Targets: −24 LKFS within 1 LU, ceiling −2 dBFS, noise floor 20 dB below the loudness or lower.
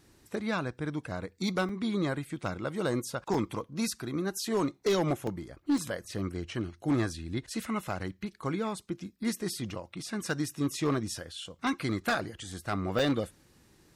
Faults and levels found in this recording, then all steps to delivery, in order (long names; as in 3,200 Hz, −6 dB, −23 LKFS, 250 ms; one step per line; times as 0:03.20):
share of clipped samples 0.9%; peaks flattened at −21.5 dBFS; number of dropouts 5; longest dropout 3.2 ms; integrated loudness −33.0 LKFS; sample peak −21.5 dBFS; target loudness −24.0 LKFS
→ clipped peaks rebuilt −21.5 dBFS
repair the gap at 0:01.69/0:03.34/0:05.27/0:05.78/0:12.99, 3.2 ms
level +9 dB